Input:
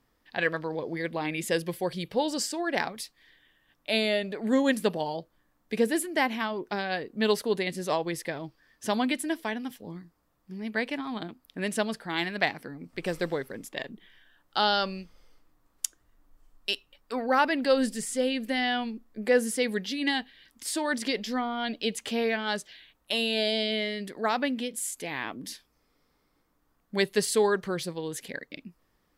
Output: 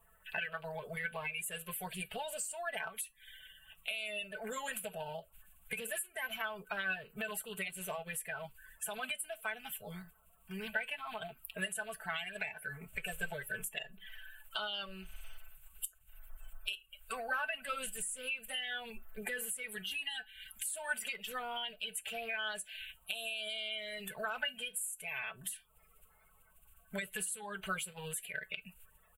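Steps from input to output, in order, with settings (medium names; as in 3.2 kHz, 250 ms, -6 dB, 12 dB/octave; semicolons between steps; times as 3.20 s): coarse spectral quantiser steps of 30 dB; comb 4.6 ms, depth 77%; peak limiter -16.5 dBFS, peak gain reduction 10 dB; FFT filter 120 Hz 0 dB, 270 Hz -28 dB, 650 Hz -4 dB, 980 Hz -9 dB, 1.8 kHz -11 dB, 2.7 kHz +6 dB, 5.2 kHz -21 dB, 8 kHz +6 dB, 13 kHz +9 dB; compression 6:1, threshold -46 dBFS, peak gain reduction 23 dB; peaking EQ 1.5 kHz +13 dB 0.37 oct; feedback comb 190 Hz, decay 0.18 s, harmonics all, mix 50%; trim +11 dB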